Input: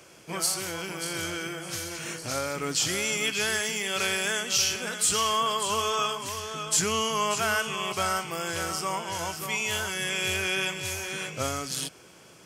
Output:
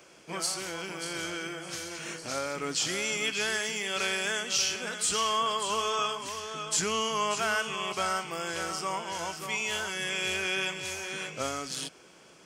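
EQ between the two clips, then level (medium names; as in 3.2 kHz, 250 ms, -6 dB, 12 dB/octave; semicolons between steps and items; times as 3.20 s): peaking EQ 100 Hz -13 dB 0.75 oct; peaking EQ 13 kHz -12.5 dB 0.58 oct; -2.0 dB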